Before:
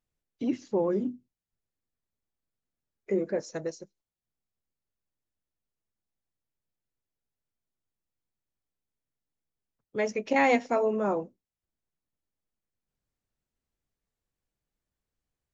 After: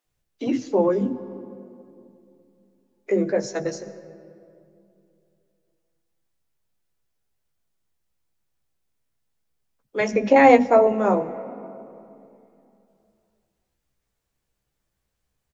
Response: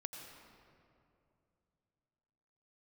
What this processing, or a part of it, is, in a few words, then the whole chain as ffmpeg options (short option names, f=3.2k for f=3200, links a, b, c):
ducked reverb: -filter_complex "[0:a]asettb=1/sr,asplit=3[a][b][c];[a]atrim=end=10.084[d];[b]atrim=start=10.08:end=10.87,asetpts=PTS-STARTPTS,afade=t=in:d=0.004:c=qsin,afade=t=out:st=0.786:d=0.004:c=qsin,tiltshelf=f=1.4k:g=6[e];[c]atrim=start=10.866[f];[d][e]acrossfade=d=0.004:c1=hsin:c2=qsin[g];[g][f]acrossfade=d=0.004:c1=qsin:c2=hsin,asplit=2[h][i];[i]adelay=15,volume=-7dB[j];[h][j]amix=inputs=2:normalize=0,asplit=3[k][l][m];[1:a]atrim=start_sample=2205[n];[l][n]afir=irnorm=-1:irlink=0[o];[m]apad=whole_len=685784[p];[o][p]sidechaincompress=threshold=-29dB:ratio=4:attack=41:release=487,volume=-4dB[q];[k][q]amix=inputs=2:normalize=0,acrossover=split=270[r][s];[r]adelay=50[t];[t][s]amix=inputs=2:normalize=0,volume=6dB"